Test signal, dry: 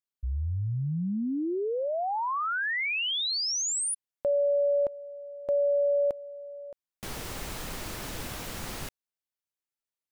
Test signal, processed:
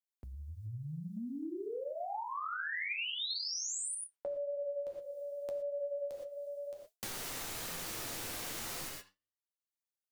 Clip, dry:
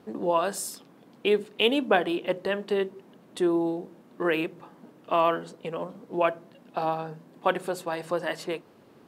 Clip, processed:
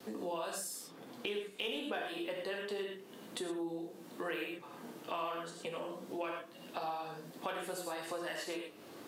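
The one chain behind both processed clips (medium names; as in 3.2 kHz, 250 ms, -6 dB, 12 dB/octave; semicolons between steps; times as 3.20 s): treble shelf 3 kHz +10 dB; flange 0.87 Hz, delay 7.1 ms, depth 9.9 ms, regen -35%; in parallel at -6.5 dB: hard clipper -18.5 dBFS; on the sum: flange 0.28 Hz, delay 3.2 ms, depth 7.6 ms, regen +90%; gated-style reverb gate 140 ms flat, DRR 0.5 dB; gate with hold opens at -50 dBFS, closes at -53 dBFS, hold 42 ms, range -24 dB; compression 2.5:1, threshold -43 dBFS; bass shelf 130 Hz -7 dB; three bands compressed up and down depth 40%; trim +1 dB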